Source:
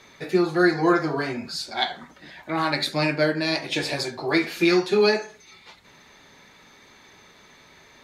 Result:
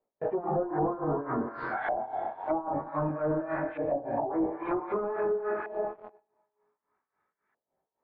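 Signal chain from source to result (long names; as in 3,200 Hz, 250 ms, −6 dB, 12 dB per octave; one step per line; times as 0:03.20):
noise reduction from a noise print of the clip's start 16 dB
four-comb reverb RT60 2.1 s, combs from 31 ms, DRR 7 dB
noise gate −50 dBFS, range −10 dB
leveller curve on the samples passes 5
brickwall limiter −27 dBFS, peak gain reduction 20 dB
chorus effect 0.25 Hz, delay 18 ms, depth 4.9 ms
amplitude tremolo 3.6 Hz, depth 81%
mid-hump overdrive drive 11 dB, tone 2,000 Hz, clips at −28 dBFS
auto-filter low-pass saw up 0.53 Hz 620–1,600 Hz
high-frequency loss of the air 190 metres
treble cut that deepens with the level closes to 570 Hz, closed at −32 dBFS
level +8.5 dB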